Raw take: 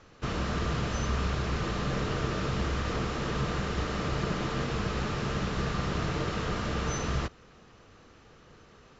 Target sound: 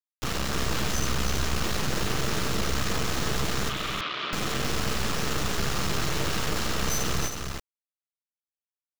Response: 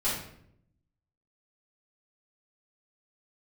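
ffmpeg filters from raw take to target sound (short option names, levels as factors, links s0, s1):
-filter_complex "[0:a]aemphasis=mode=production:type=75kf,acrusher=bits=4:dc=4:mix=0:aa=0.000001,asoftclip=type=tanh:threshold=0.0531,asettb=1/sr,asplit=3[s0][s1][s2];[s0]atrim=end=3.694[s3];[s1]atrim=start=3.69:end=4.33,asetpts=PTS-STARTPTS,afade=t=in:d=0.004:c=qsin,afade=t=out:st=0.636:d=0.004:c=qsin,highpass=420,equalizer=f=480:t=q:w=4:g=-10,equalizer=f=800:t=q:w=4:g=-10,equalizer=f=1200:t=q:w=4:g=5,equalizer=f=1700:t=q:w=4:g=-3,equalizer=f=2400:t=q:w=4:g=3,equalizer=f=3400:t=q:w=4:g=6,lowpass=f=3800:w=0.5412,lowpass=f=3800:w=1.3066[s4];[s2]atrim=start=4.326[s5];[s3][s4]acrossfade=d=0.004:c1=hsin:c2=qsin[s6];[s6][s5]acrossfade=d=0.004:c1=qsin:c2=hsin,aecho=1:1:317:0.531,volume=2.24"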